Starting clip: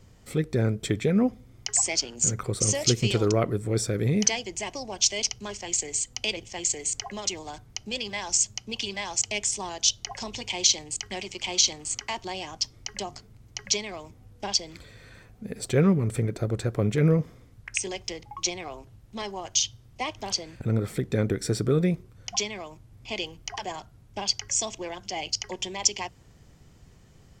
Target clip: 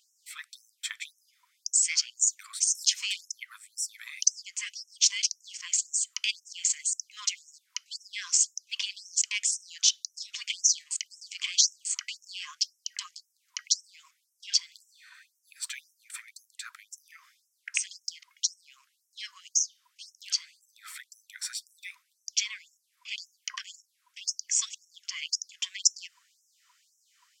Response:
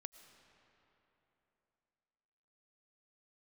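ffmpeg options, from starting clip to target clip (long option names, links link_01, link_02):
-af "aeval=exprs='val(0)+0.01*sin(2*PI*950*n/s)':channel_layout=same,afftfilt=real='re*gte(b*sr/1024,990*pow(5400/990,0.5+0.5*sin(2*PI*1.9*pts/sr)))':imag='im*gte(b*sr/1024,990*pow(5400/990,0.5+0.5*sin(2*PI*1.9*pts/sr)))':win_size=1024:overlap=0.75"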